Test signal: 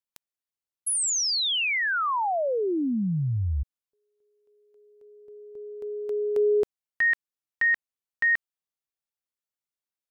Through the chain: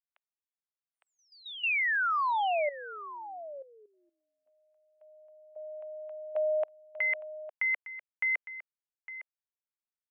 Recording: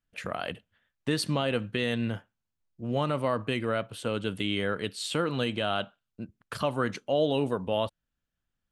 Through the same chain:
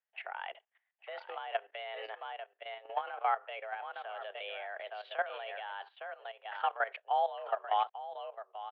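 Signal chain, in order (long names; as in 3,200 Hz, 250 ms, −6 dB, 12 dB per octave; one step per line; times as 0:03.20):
single-tap delay 858 ms −10 dB
single-sideband voice off tune +200 Hz 380–2,700 Hz
output level in coarse steps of 14 dB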